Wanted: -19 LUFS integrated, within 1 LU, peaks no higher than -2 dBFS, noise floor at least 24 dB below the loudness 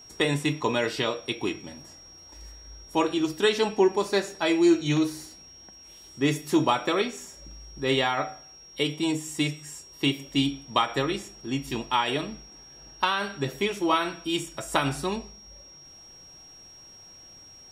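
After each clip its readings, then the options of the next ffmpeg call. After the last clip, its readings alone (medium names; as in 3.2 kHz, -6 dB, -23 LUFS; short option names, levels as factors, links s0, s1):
steady tone 5.6 kHz; tone level -47 dBFS; loudness -26.5 LUFS; peak level -7.5 dBFS; loudness target -19.0 LUFS
-> -af "bandreject=f=5600:w=30"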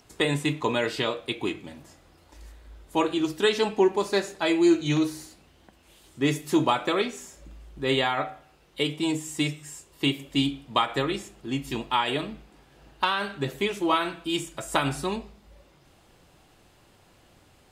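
steady tone not found; loudness -26.5 LUFS; peak level -7.5 dBFS; loudness target -19.0 LUFS
-> -af "volume=2.37,alimiter=limit=0.794:level=0:latency=1"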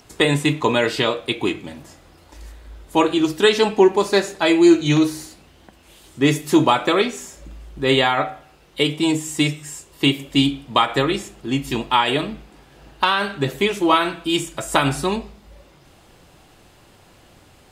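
loudness -19.0 LUFS; peak level -2.0 dBFS; noise floor -51 dBFS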